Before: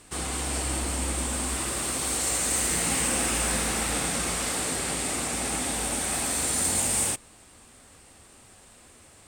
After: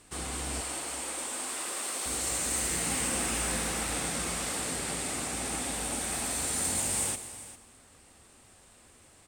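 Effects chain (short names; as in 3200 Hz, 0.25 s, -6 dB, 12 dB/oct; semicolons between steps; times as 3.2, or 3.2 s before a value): 0.61–2.06 HPF 410 Hz 12 dB/oct; echo 0.401 s -15.5 dB; reverb, pre-delay 83 ms, DRR 12.5 dB; gain -5 dB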